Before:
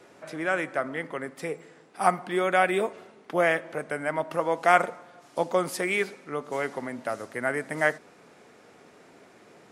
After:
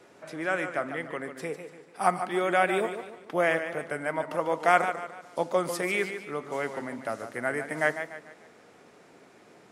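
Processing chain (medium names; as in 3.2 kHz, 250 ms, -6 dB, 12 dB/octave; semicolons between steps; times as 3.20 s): modulated delay 146 ms, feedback 40%, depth 95 cents, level -9.5 dB; trim -2 dB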